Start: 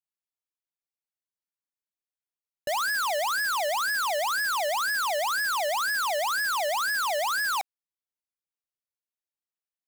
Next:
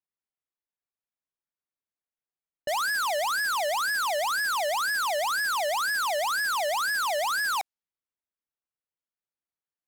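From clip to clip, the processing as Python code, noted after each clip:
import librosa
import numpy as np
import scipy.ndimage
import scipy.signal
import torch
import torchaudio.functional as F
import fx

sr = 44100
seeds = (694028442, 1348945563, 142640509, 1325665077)

y = fx.env_lowpass(x, sr, base_hz=2100.0, full_db=-30.0)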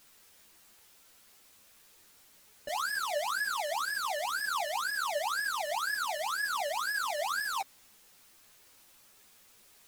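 y = fx.dmg_noise_colour(x, sr, seeds[0], colour='white', level_db=-54.0)
y = fx.ensemble(y, sr)
y = y * 10.0 ** (-3.0 / 20.0)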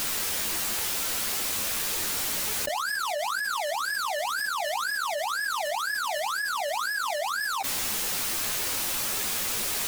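y = fx.env_flatten(x, sr, amount_pct=100)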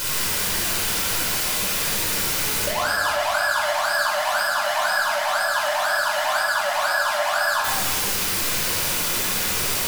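y = fx.room_shoebox(x, sr, seeds[1], volume_m3=2500.0, walls='mixed', distance_m=4.9)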